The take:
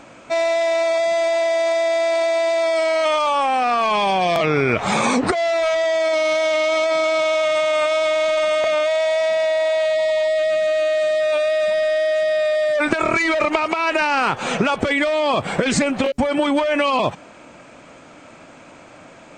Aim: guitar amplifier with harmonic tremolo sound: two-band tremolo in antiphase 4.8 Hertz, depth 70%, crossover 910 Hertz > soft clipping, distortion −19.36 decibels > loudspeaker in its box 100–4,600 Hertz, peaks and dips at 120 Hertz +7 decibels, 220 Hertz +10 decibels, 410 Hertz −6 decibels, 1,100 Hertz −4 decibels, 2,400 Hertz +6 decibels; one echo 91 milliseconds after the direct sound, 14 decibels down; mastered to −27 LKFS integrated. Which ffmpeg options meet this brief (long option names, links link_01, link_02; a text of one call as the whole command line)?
ffmpeg -i in.wav -filter_complex "[0:a]aecho=1:1:91:0.2,acrossover=split=910[link_01][link_02];[link_01]aeval=exprs='val(0)*(1-0.7/2+0.7/2*cos(2*PI*4.8*n/s))':channel_layout=same[link_03];[link_02]aeval=exprs='val(0)*(1-0.7/2-0.7/2*cos(2*PI*4.8*n/s))':channel_layout=same[link_04];[link_03][link_04]amix=inputs=2:normalize=0,asoftclip=threshold=-15dB,highpass=100,equalizer=frequency=120:width_type=q:width=4:gain=7,equalizer=frequency=220:width_type=q:width=4:gain=10,equalizer=frequency=410:width_type=q:width=4:gain=-6,equalizer=frequency=1100:width_type=q:width=4:gain=-4,equalizer=frequency=2400:width_type=q:width=4:gain=6,lowpass=frequency=4600:width=0.5412,lowpass=frequency=4600:width=1.3066,volume=-4.5dB" out.wav